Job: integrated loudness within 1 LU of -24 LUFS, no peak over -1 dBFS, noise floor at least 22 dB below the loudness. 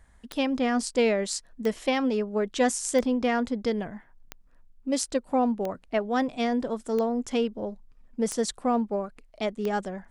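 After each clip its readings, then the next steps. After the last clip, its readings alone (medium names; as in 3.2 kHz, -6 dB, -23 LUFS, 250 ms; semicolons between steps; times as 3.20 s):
clicks found 8; loudness -27.5 LUFS; peak level -10.0 dBFS; loudness target -24.0 LUFS
-> de-click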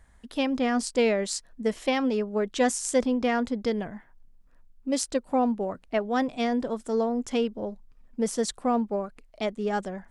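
clicks found 0; loudness -27.5 LUFS; peak level -10.0 dBFS; loudness target -24.0 LUFS
-> trim +3.5 dB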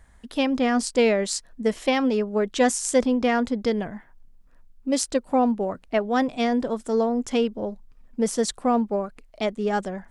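loudness -24.0 LUFS; peak level -6.5 dBFS; noise floor -54 dBFS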